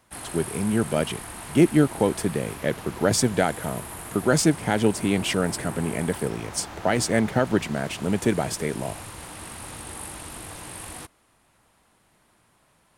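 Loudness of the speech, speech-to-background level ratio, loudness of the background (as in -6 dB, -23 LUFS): -24.5 LUFS, 13.0 dB, -37.5 LUFS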